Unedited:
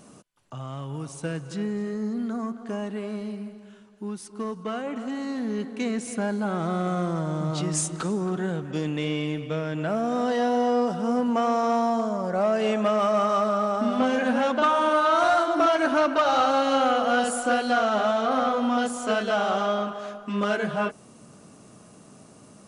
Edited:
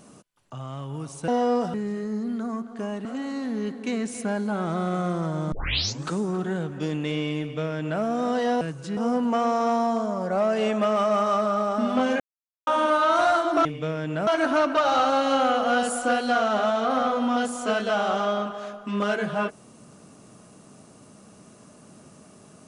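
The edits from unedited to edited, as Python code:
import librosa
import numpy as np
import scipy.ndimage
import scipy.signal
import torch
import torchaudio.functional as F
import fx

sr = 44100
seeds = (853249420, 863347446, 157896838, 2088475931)

y = fx.edit(x, sr, fx.swap(start_s=1.28, length_s=0.36, other_s=10.54, other_length_s=0.46),
    fx.cut(start_s=2.95, length_s=2.03),
    fx.tape_start(start_s=7.45, length_s=0.56),
    fx.duplicate(start_s=9.33, length_s=0.62, to_s=15.68),
    fx.silence(start_s=14.23, length_s=0.47), tone=tone)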